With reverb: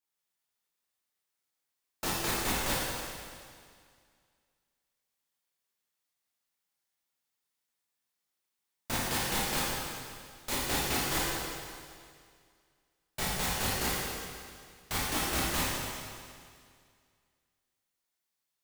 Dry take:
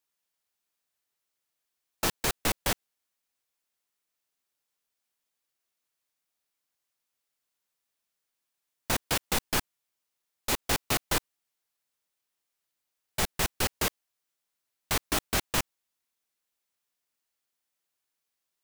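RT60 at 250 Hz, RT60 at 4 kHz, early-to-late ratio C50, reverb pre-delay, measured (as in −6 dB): 2.1 s, 2.1 s, −2.5 dB, 21 ms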